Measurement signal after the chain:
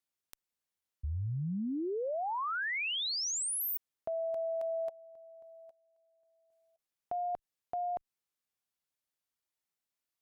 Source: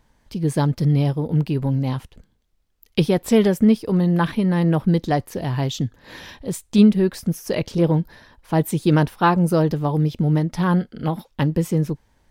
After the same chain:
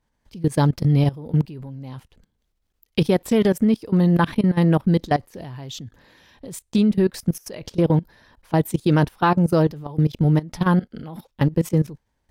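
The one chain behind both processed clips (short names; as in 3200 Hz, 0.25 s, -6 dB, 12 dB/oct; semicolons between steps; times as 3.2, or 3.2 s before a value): added harmonics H 3 -29 dB, 5 -42 dB, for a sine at -2.5 dBFS; level quantiser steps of 19 dB; gain +3.5 dB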